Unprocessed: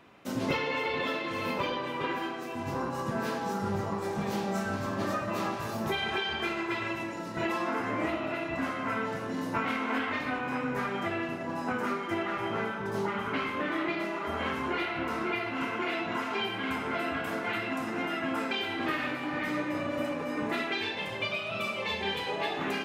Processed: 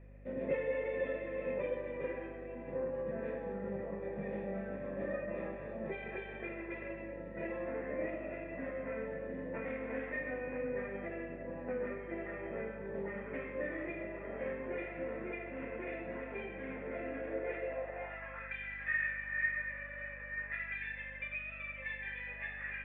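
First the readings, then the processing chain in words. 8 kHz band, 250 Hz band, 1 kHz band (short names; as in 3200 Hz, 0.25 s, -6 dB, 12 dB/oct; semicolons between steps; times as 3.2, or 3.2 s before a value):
under -30 dB, -11.0 dB, -17.5 dB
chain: vocal tract filter e; high-pass sweep 170 Hz -> 1600 Hz, 16.91–18.57; hum 50 Hz, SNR 14 dB; gain +3 dB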